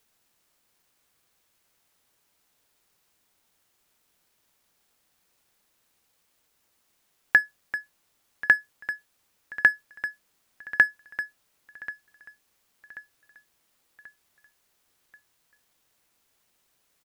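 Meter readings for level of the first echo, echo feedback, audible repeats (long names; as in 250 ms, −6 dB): −18.0 dB, 48%, 3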